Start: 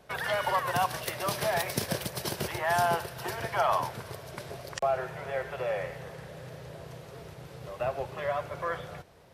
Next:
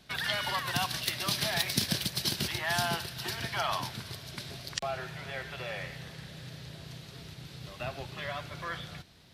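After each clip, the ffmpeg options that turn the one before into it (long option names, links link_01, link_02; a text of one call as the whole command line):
ffmpeg -i in.wav -af "equalizer=frequency=250:width_type=o:width=1:gain=5,equalizer=frequency=500:width_type=o:width=1:gain=-12,equalizer=frequency=1000:width_type=o:width=1:gain=-5,equalizer=frequency=4000:width_type=o:width=1:gain=10" out.wav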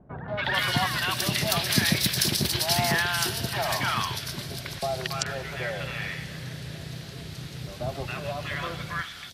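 ffmpeg -i in.wav -filter_complex "[0:a]acrossover=split=960|3600[link_01][link_02][link_03];[link_02]adelay=280[link_04];[link_03]adelay=440[link_05];[link_01][link_04][link_05]amix=inputs=3:normalize=0,volume=8dB" out.wav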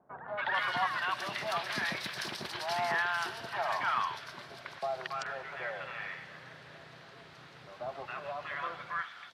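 ffmpeg -i in.wav -af "bandpass=frequency=1100:width_type=q:width=1.3:csg=0,volume=-1dB" out.wav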